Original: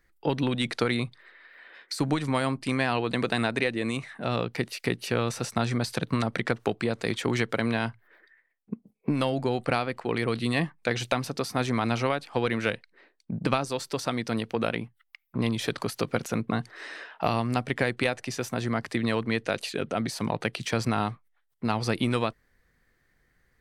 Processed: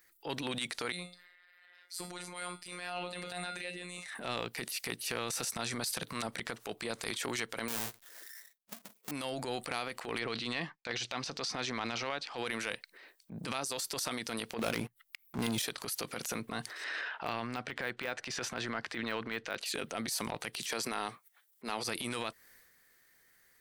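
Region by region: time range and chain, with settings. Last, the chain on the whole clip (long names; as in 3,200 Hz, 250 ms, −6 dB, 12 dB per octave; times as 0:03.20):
0:00.92–0:04.06: tuned comb filter 240 Hz, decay 0.32 s, mix 80% + phases set to zero 178 Hz
0:07.68–0:09.11: each half-wave held at its own peak + noise gate with hold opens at −53 dBFS, closes at −59 dBFS
0:10.19–0:12.38: downward expander −49 dBFS + low-pass filter 5,800 Hz 24 dB per octave
0:14.59–0:15.62: leveller curve on the samples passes 3 + low-shelf EQ 480 Hz +7.5 dB
0:16.84–0:19.66: low-pass filter 3,700 Hz + de-essing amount 95% + parametric band 1,500 Hz +5 dB 0.35 octaves
0:20.58–0:21.84: high-pass filter 170 Hz + parametric band 410 Hz +4.5 dB 0.36 octaves
whole clip: RIAA equalisation recording; downward compressor, threshold −31 dBFS; transient designer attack −10 dB, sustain +6 dB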